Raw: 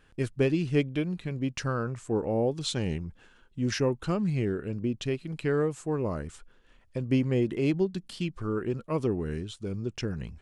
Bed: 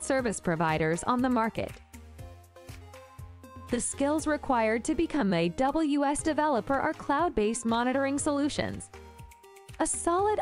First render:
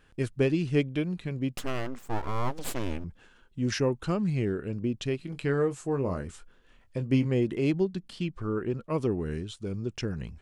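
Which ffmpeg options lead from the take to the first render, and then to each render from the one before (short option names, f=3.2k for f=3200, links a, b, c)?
-filter_complex "[0:a]asettb=1/sr,asplit=3[a][b][c];[a]atrim=end=1.564[d];[b]atrim=start=1.56:end=3.04,asetpts=PTS-STARTPTS,afade=t=in:d=0.004:c=qsin,afade=t=out:st=1.476:d=0.004:c=qsin,aeval=exprs='abs(val(0))':c=same[e];[c]atrim=start=3.036[f];[d][e]acrossfade=d=0.004:c1=hsin:c2=qsin[g];[g][f]acrossfade=d=0.004:c1=qsin:c2=hsin,asettb=1/sr,asplit=3[h][i][j];[h]atrim=end=5.174[k];[i]atrim=start=5.17:end=7.27,asetpts=PTS-STARTPTS,afade=t=in:d=0.004:c=qsin,afade=t=out:st=2.096:d=0.004:c=qsin,asplit=2[l][m];[m]adelay=22,volume=-9dB[n];[l][n]amix=inputs=2:normalize=0,atrim=end_sample=92610[o];[j]atrim=start=7.266[p];[k][o]acrossfade=d=0.004:c1=hsin:c2=qsin[q];[q][p]acrossfade=d=0.004:c1=qsin:c2=hsin,asettb=1/sr,asplit=3[r][s][t];[r]atrim=end=7.934[u];[s]atrim=start=7.93:end=8.9,asetpts=PTS-STARTPTS,afade=t=in:d=0.004:c=qsin,afade=t=out:st=0.966:d=0.004:c=qsin,highshelf=f=5.2k:g=-8[v];[t]atrim=start=8.896[w];[u][v]acrossfade=d=0.004:c1=hsin:c2=qsin[x];[x][w]acrossfade=d=0.004:c1=qsin:c2=hsin"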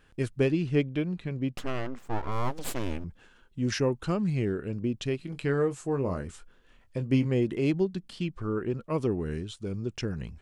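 -filter_complex "[0:a]asettb=1/sr,asplit=3[a][b][c];[a]atrim=end=0.504[d];[b]atrim=start=0.5:end=2.32,asetpts=PTS-STARTPTS,afade=t=in:d=0.004:c=qsin,afade=t=out:st=1.816:d=0.004:c=qsin,highshelf=f=6.5k:g=-11[e];[c]atrim=start=2.316[f];[d][e]acrossfade=d=0.004:c1=hsin:c2=qsin[g];[g][f]acrossfade=d=0.004:c1=qsin:c2=hsin"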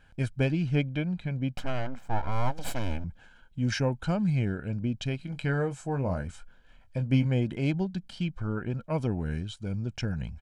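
-af "highshelf=f=6.7k:g=-6.5,aecho=1:1:1.3:0.63"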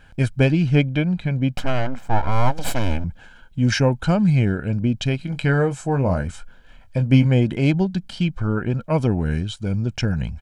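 -af "volume=9.5dB"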